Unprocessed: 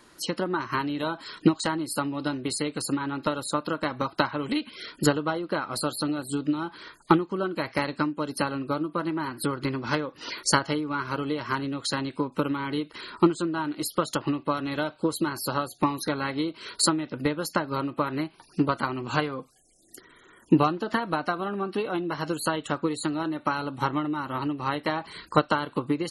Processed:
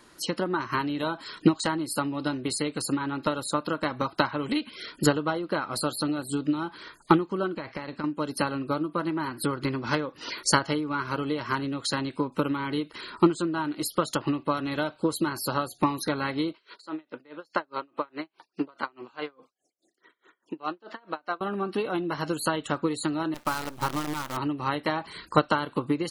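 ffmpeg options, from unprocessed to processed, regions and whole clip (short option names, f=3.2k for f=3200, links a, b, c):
-filter_complex "[0:a]asettb=1/sr,asplit=3[a][b][c];[a]atrim=end=7.544[d];[b]atrim=start=7.54:end=8.04,asetpts=PTS-STARTPTS,afade=t=in:d=0.004:c=qsin,afade=t=out:st=0.496:d=0.004:c=qsin,lowpass=6.7k,acompressor=threshold=-29dB:ratio=10:attack=3.2:release=140:knee=1:detection=peak,highshelf=f=5.3k:g=-6.5[e];[c]atrim=start=8.036[f];[d][e]acrossfade=d=0.004:c1=hsin:c2=qsin[g];[g][f]acrossfade=d=0.004:c1=qsin:c2=hsin,asettb=1/sr,asplit=3[h][i][j];[h]atrim=end=16.534[k];[i]atrim=start=16.53:end=21.41,asetpts=PTS-STARTPTS,afade=t=in:d=0.004:c=qsin,afade=t=out:st=4.876:d=0.004:c=qsin,highpass=350,lowpass=4.8k,aeval=exprs='val(0)*pow(10,-30*(0.5-0.5*cos(2*PI*4.8*n/s))/20)':c=same[l];[j]atrim=start=21.406[m];[k][l]acrossfade=d=0.004:c1=hsin:c2=qsin[n];[n][m]acrossfade=d=0.004:c1=qsin:c2=hsin,asettb=1/sr,asplit=3[o][p][q];[o]atrim=end=23.344[r];[p]atrim=start=23.34:end=24.37,asetpts=PTS-STARTPTS,afade=t=in:d=0.004:c=qsin,afade=t=out:st=1.026:d=0.004:c=qsin,aeval=exprs='if(lt(val(0),0),0.708*val(0),val(0))':c=same,adynamicequalizer=threshold=0.0112:dfrequency=320:dqfactor=1.4:tfrequency=320:tqfactor=1.4:attack=5:release=100:ratio=0.375:range=2:mode=cutabove:tftype=bell,acrusher=bits=6:dc=4:mix=0:aa=0.000001[s];[q]atrim=start=24.366[t];[r][s]acrossfade=d=0.004:c1=hsin:c2=qsin[u];[u][t]acrossfade=d=0.004:c1=qsin:c2=hsin"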